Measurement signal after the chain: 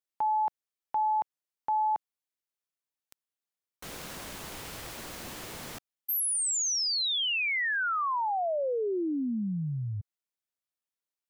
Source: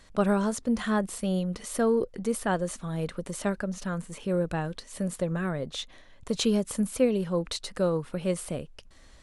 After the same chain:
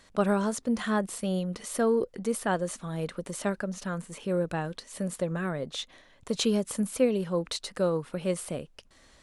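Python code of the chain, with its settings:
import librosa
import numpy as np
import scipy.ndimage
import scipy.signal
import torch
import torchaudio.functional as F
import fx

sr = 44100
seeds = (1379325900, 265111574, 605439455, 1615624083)

y = fx.low_shelf(x, sr, hz=86.0, db=-11.0)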